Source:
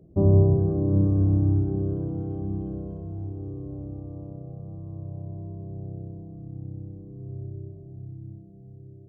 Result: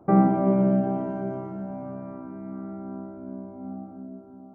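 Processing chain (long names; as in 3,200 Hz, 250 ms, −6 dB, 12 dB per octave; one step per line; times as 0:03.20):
wrong playback speed 7.5 ips tape played at 15 ips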